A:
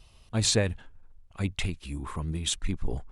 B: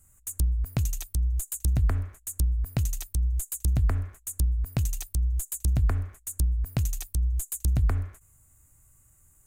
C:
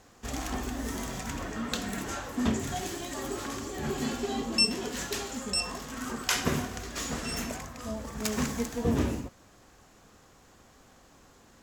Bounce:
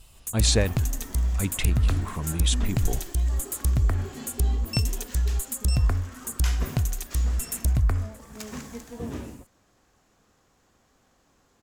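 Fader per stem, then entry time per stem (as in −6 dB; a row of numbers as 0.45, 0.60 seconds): +2.0, +1.5, −7.5 decibels; 0.00, 0.00, 0.15 seconds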